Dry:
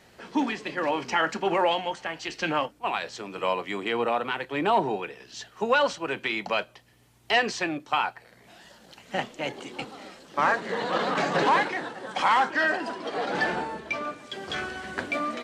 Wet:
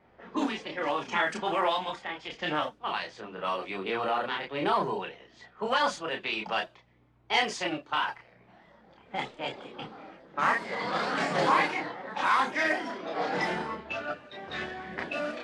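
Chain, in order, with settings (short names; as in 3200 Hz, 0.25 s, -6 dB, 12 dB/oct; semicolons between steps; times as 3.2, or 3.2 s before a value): low-pass opened by the level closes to 1300 Hz, open at -20.5 dBFS; chorus voices 4, 0.31 Hz, delay 30 ms, depth 3.3 ms; formant shift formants +2 st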